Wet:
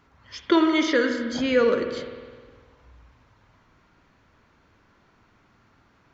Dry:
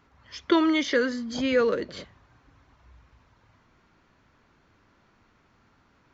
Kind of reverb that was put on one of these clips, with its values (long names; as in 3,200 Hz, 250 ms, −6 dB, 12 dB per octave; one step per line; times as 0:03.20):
spring reverb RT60 1.6 s, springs 51 ms, chirp 45 ms, DRR 6 dB
level +1.5 dB